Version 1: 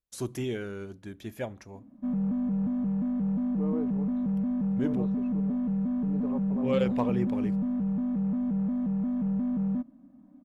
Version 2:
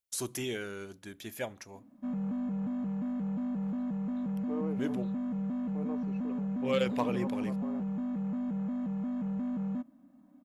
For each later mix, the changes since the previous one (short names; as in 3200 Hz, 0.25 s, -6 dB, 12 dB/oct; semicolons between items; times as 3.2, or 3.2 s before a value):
second voice: entry +0.90 s; master: add tilt +2.5 dB/oct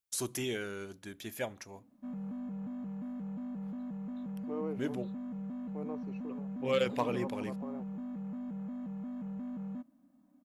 background -6.5 dB